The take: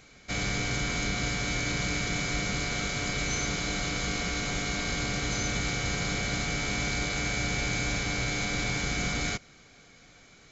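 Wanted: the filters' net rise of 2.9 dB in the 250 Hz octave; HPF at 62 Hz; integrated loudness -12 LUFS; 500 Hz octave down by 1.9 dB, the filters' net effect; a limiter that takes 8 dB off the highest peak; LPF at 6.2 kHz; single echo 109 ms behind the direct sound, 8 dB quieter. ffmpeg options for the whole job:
-af "highpass=62,lowpass=6200,equalizer=f=250:t=o:g=5,equalizer=f=500:t=o:g=-4,alimiter=level_in=1.19:limit=0.0631:level=0:latency=1,volume=0.841,aecho=1:1:109:0.398,volume=10.6"

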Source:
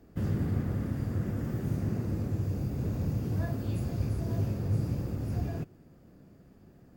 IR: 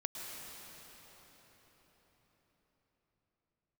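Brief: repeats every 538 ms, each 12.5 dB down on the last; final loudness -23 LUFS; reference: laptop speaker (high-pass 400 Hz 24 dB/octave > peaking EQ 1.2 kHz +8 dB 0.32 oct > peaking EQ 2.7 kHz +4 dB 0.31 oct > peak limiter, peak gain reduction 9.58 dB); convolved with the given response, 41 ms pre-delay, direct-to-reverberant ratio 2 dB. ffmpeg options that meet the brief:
-filter_complex "[0:a]aecho=1:1:538|1076|1614:0.237|0.0569|0.0137,asplit=2[s0][s1];[1:a]atrim=start_sample=2205,adelay=41[s2];[s1][s2]afir=irnorm=-1:irlink=0,volume=0.708[s3];[s0][s3]amix=inputs=2:normalize=0,highpass=f=400:w=0.5412,highpass=f=400:w=1.3066,equalizer=f=1200:t=o:w=0.32:g=8,equalizer=f=2700:t=o:w=0.31:g=4,volume=15,alimiter=limit=0.211:level=0:latency=1"

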